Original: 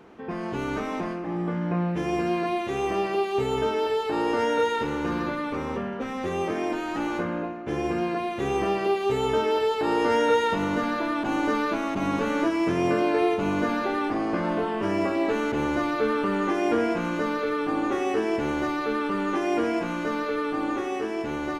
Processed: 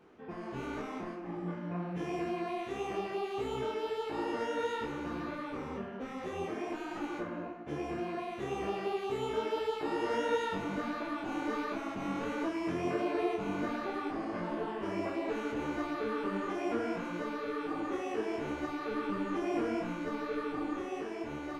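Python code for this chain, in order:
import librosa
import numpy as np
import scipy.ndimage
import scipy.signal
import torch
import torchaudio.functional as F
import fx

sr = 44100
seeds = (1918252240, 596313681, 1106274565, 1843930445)

y = fx.low_shelf(x, sr, hz=210.0, db=7.0, at=(18.91, 21.03))
y = fx.detune_double(y, sr, cents=50)
y = F.gain(torch.from_numpy(y), -6.5).numpy()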